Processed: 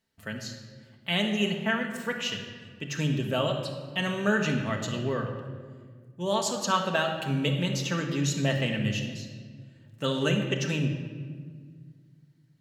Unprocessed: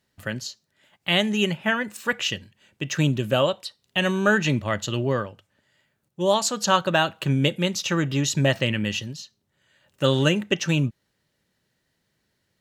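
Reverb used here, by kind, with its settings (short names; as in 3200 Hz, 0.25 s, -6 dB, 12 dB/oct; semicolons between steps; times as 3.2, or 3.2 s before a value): shoebox room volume 2300 m³, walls mixed, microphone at 1.6 m; gain -7.5 dB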